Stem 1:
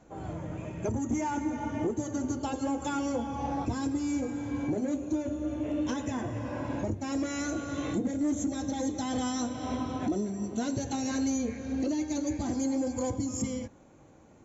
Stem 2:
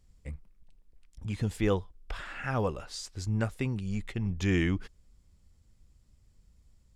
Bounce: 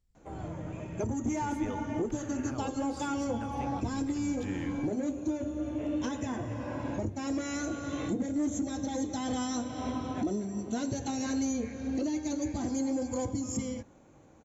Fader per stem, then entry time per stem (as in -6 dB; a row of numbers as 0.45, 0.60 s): -1.5, -12.5 dB; 0.15, 0.00 s